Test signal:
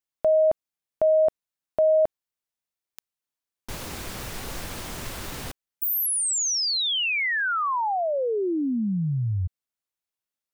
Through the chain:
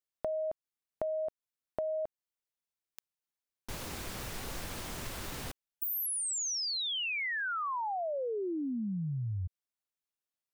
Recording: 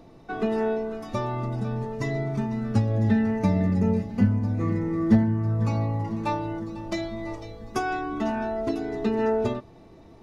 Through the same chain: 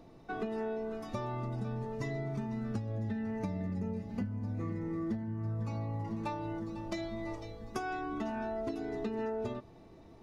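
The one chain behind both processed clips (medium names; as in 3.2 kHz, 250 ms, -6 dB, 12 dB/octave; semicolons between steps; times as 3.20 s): compression 10:1, threshold -27 dBFS; trim -5.5 dB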